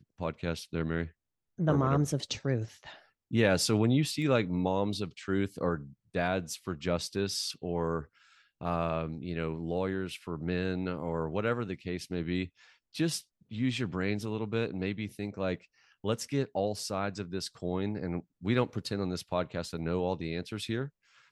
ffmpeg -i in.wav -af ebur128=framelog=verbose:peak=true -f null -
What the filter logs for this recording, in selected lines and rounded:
Integrated loudness:
  I:         -32.6 LUFS
  Threshold: -42.9 LUFS
Loudness range:
  LRA:         5.1 LU
  Threshold: -52.8 LUFS
  LRA low:   -34.6 LUFS
  LRA high:  -29.5 LUFS
True peak:
  Peak:      -12.4 dBFS